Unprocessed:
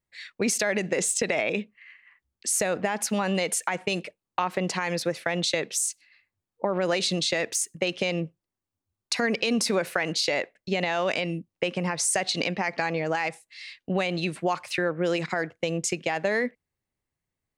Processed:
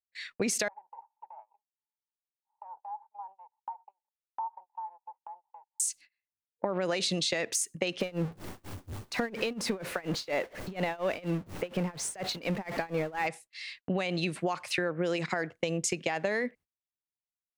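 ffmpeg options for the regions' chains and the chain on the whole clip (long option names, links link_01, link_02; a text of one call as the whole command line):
ffmpeg -i in.wav -filter_complex "[0:a]asettb=1/sr,asplit=3[link_01][link_02][link_03];[link_01]atrim=end=0.684[link_04];[link_02]atrim=start=0.68:end=5.8,asetpts=PTS-STARTPTS,afade=type=in:duration=0.004:curve=qsin,afade=type=out:start_time=5.116:duration=0.004:curve=qsin,aeval=exprs='if(lt(val(0),0),0.251*val(0),val(0))':channel_layout=same,asuperpass=centerf=880:order=4:qfactor=7.5,aemphasis=mode=reproduction:type=cd[link_05];[link_03]atrim=start=5.796[link_06];[link_04][link_05]acrossfade=duration=0.004:curve1=hsin:curve2=qsin[link_07];[link_07][link_06]acrossfade=duration=0.004:curve1=qsin:curve2=hsin,asettb=1/sr,asplit=3[link_08][link_09][link_10];[link_08]atrim=end=8.004[link_11];[link_09]atrim=start=8:end=13.27,asetpts=PTS-STARTPTS,afade=type=in:duration=0.004:curve=qsin,afade=type=out:start_time=5.266:duration=0.004:curve=qsin,aeval=exprs='val(0)+0.5*0.0355*sgn(val(0))':channel_layout=same,highshelf=frequency=2700:gain=-11.5,tremolo=f=4.2:d=0.94[link_12];[link_10]atrim=start=13.266[link_13];[link_11][link_12]acrossfade=duration=0.004:curve1=hsin:curve2=qsin[link_14];[link_14][link_13]acrossfade=duration=0.004:curve1=qsin:curve2=hsin,agate=range=-27dB:threshold=-48dB:ratio=16:detection=peak,acompressor=threshold=-26dB:ratio=6" out.wav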